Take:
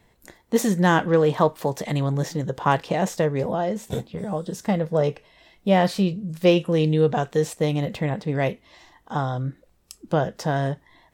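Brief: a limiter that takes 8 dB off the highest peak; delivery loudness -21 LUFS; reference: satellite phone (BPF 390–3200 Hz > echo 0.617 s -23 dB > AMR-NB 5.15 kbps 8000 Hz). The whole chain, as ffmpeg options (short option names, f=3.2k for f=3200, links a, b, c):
-af "alimiter=limit=-13.5dB:level=0:latency=1,highpass=390,lowpass=3.2k,aecho=1:1:617:0.0708,volume=9dB" -ar 8000 -c:a libopencore_amrnb -b:a 5150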